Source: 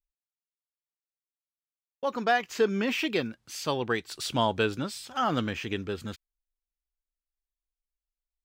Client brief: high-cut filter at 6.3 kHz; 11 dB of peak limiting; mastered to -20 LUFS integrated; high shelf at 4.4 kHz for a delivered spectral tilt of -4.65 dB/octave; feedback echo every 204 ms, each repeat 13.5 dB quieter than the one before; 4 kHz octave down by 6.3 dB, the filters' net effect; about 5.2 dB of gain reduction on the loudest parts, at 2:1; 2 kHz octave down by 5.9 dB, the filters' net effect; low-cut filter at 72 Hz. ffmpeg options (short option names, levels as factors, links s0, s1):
-af "highpass=72,lowpass=6300,equalizer=f=2000:t=o:g=-7,equalizer=f=4000:t=o:g=-8,highshelf=f=4400:g=5.5,acompressor=threshold=0.0355:ratio=2,alimiter=level_in=1.5:limit=0.0631:level=0:latency=1,volume=0.668,aecho=1:1:204|408:0.211|0.0444,volume=7.94"